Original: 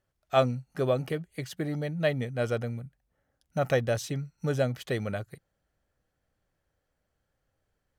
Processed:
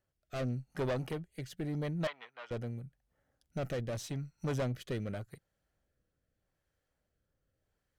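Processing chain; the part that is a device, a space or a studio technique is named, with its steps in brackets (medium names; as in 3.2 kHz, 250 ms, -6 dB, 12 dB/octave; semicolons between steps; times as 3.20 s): overdriven rotary cabinet (valve stage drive 29 dB, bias 0.45; rotary cabinet horn 0.85 Hz); 2.07–2.51 s: Chebyshev band-pass 1–3.3 kHz, order 2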